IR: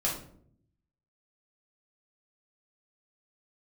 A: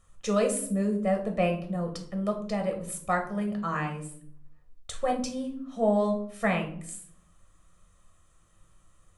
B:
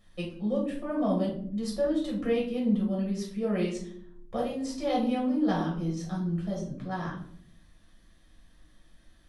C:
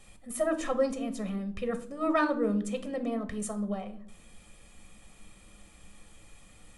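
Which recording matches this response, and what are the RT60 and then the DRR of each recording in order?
B; 0.65, 0.60, 0.65 s; 2.5, -4.5, 8.0 dB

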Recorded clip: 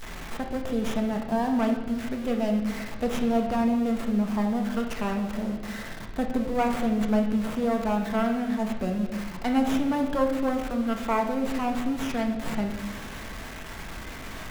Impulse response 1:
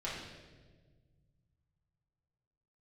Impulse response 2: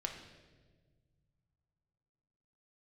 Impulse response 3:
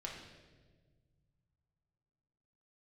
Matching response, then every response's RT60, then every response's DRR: 2; 1.5, 1.5, 1.5 s; -8.0, 2.0, -2.5 dB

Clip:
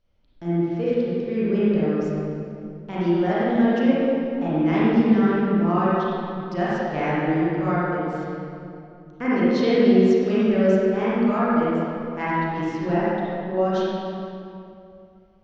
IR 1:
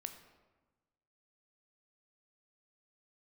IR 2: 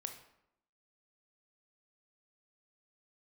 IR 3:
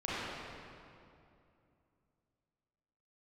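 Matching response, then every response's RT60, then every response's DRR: 3; 1.2, 0.80, 2.6 s; 6.5, 5.5, -10.0 dB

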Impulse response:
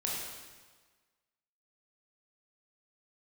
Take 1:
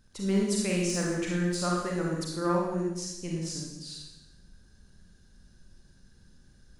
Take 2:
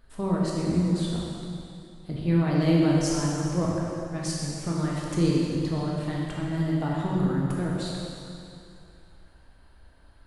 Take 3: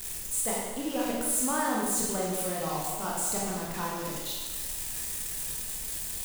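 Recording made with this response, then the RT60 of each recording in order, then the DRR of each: 3; 1.0, 2.7, 1.4 s; -3.0, -4.5, -4.5 dB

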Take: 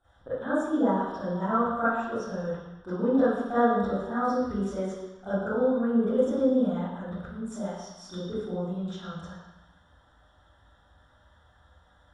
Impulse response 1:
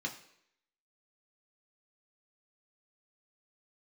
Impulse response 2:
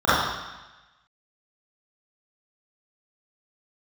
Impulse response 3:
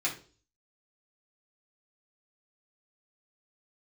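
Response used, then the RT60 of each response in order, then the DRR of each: 2; not exponential, 1.1 s, 0.40 s; 0.5, -14.0, -6.0 dB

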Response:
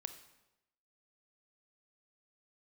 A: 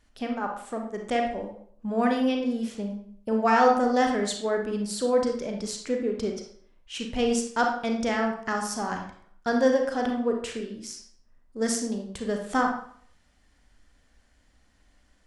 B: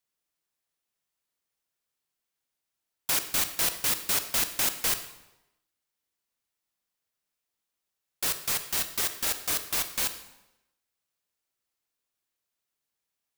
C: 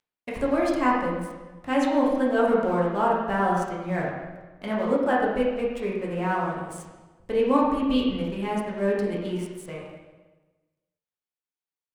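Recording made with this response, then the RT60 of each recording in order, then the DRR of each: B; 0.60, 0.95, 1.3 s; 2.0, 9.0, -5.0 dB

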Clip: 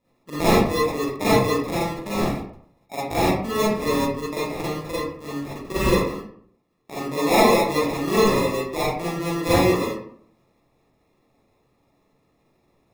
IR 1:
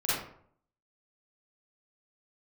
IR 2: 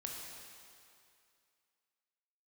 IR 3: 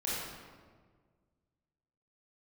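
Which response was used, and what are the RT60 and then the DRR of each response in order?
1; 0.60, 2.4, 1.6 s; -10.5, -1.0, -8.5 dB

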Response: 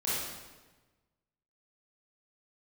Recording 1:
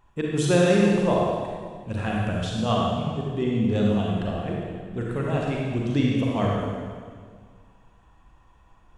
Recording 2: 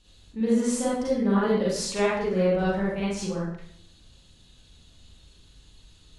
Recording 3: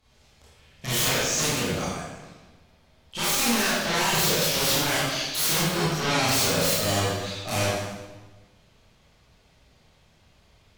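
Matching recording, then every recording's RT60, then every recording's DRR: 3; 1.8, 0.65, 1.2 s; -3.0, -7.5, -10.0 dB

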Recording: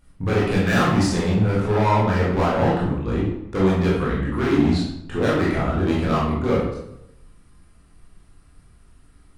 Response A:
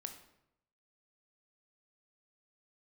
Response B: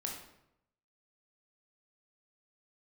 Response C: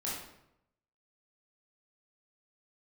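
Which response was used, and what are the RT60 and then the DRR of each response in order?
C; 0.80, 0.80, 0.80 s; 6.0, -0.5, -7.0 dB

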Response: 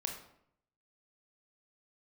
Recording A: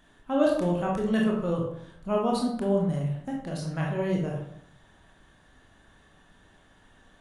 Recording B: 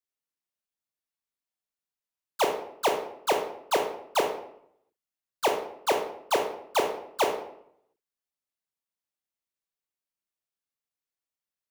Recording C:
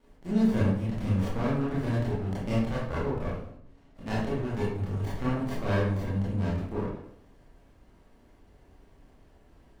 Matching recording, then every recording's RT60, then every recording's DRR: B; 0.70, 0.70, 0.70 s; -2.5, 2.0, -8.5 dB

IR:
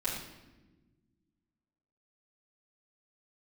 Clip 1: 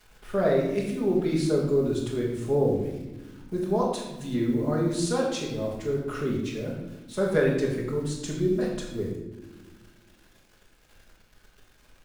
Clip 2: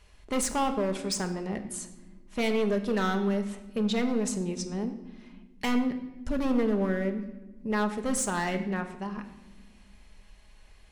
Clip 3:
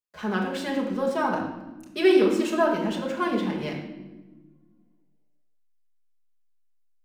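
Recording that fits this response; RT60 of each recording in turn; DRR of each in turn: 1; not exponential, not exponential, not exponential; -10.0, 5.5, -2.0 dB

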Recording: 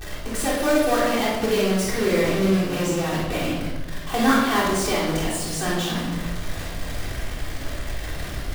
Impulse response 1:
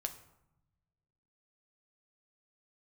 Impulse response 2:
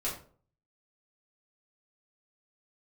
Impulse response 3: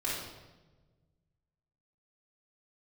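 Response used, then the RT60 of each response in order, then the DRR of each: 3; 0.85, 0.45, 1.2 s; 5.5, -7.0, -8.5 dB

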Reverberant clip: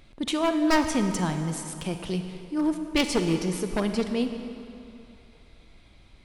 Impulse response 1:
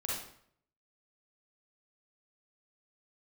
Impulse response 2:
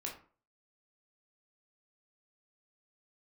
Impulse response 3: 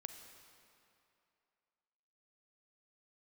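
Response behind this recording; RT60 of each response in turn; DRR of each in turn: 3; 0.65, 0.40, 2.7 s; -5.5, -1.5, 6.5 dB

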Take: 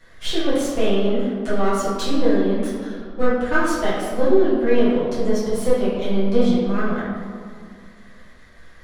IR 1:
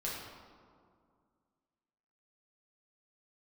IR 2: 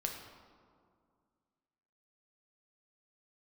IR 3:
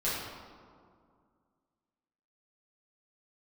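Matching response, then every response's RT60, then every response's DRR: 3; 2.2, 2.2, 2.2 s; -6.5, 1.0, -11.0 dB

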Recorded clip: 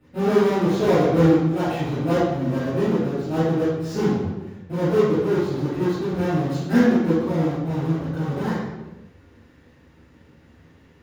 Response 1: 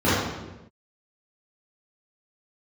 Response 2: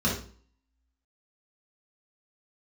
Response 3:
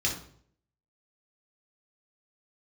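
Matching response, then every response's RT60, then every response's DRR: 1; not exponential, 0.45 s, 0.60 s; -13.5, -5.5, -1.5 dB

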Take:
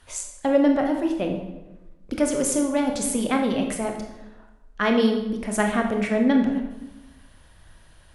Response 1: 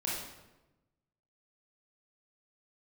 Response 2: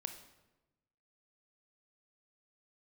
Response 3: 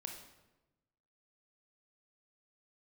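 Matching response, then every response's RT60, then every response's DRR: 3; 1.0, 1.1, 1.1 s; -6.0, 7.0, 2.5 dB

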